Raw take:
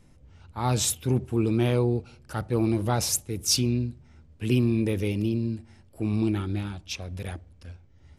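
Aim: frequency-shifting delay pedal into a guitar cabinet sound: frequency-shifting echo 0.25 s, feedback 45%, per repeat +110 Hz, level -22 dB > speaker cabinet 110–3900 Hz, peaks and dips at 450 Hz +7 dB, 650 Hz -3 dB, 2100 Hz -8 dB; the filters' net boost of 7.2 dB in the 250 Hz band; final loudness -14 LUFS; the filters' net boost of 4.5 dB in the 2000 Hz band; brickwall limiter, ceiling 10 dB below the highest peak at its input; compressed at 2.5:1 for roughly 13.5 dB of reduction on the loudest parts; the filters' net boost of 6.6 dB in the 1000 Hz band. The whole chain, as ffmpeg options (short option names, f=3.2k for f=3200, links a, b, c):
-filter_complex "[0:a]equalizer=f=250:t=o:g=8,equalizer=f=1k:t=o:g=7,equalizer=f=2k:t=o:g=8,acompressor=threshold=-35dB:ratio=2.5,alimiter=level_in=4dB:limit=-24dB:level=0:latency=1,volume=-4dB,asplit=4[a][b][c][d];[b]adelay=250,afreqshift=110,volume=-22dB[e];[c]adelay=500,afreqshift=220,volume=-28.9dB[f];[d]adelay=750,afreqshift=330,volume=-35.9dB[g];[a][e][f][g]amix=inputs=4:normalize=0,highpass=110,equalizer=f=450:t=q:w=4:g=7,equalizer=f=650:t=q:w=4:g=-3,equalizer=f=2.1k:t=q:w=4:g=-8,lowpass=f=3.9k:w=0.5412,lowpass=f=3.9k:w=1.3066,volume=24.5dB"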